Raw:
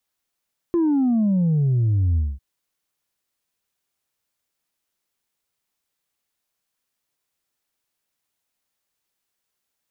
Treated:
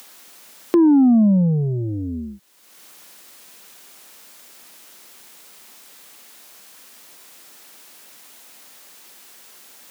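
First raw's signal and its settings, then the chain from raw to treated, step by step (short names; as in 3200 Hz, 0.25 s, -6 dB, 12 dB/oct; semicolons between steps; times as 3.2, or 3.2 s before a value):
sub drop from 350 Hz, over 1.65 s, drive 1.5 dB, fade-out 0.22 s, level -16.5 dB
HPF 180 Hz 24 dB/oct; in parallel at +1 dB: upward compressor, threshold -21 dBFS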